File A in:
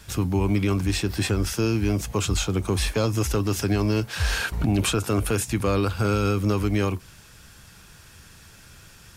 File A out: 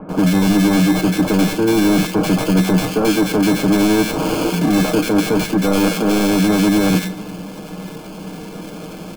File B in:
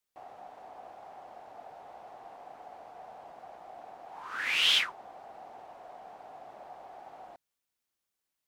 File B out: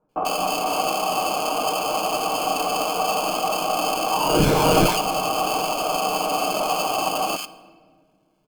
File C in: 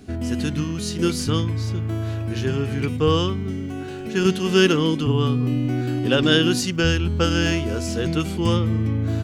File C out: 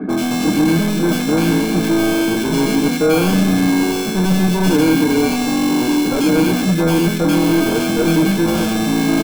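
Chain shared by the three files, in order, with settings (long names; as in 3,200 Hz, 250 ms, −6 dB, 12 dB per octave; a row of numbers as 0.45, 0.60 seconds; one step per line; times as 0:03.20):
Chebyshev high-pass filter 180 Hz, order 6
reversed playback
downward compressor 6 to 1, threshold −32 dBFS
reversed playback
spectral tilt −3.5 dB per octave
sample-rate reduction 1,900 Hz, jitter 0%
soft clipping −32.5 dBFS
comb filter 6.4 ms, depth 44%
multiband delay without the direct sound lows, highs 90 ms, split 1,500 Hz
rectangular room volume 2,200 cubic metres, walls mixed, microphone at 0.38 metres
normalise the peak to −3 dBFS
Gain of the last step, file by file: +20.0, +24.0, +19.5 decibels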